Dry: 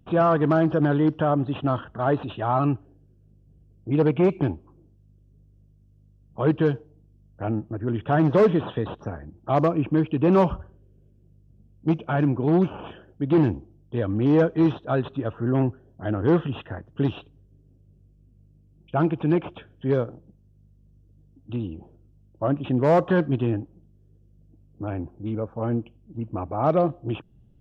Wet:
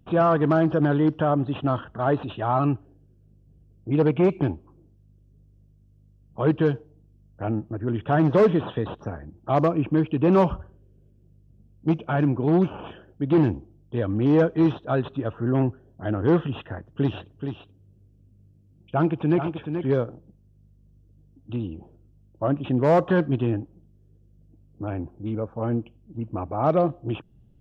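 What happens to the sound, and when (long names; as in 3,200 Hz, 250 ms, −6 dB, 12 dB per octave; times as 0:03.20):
0:16.68–0:19.87: single-tap delay 430 ms −7.5 dB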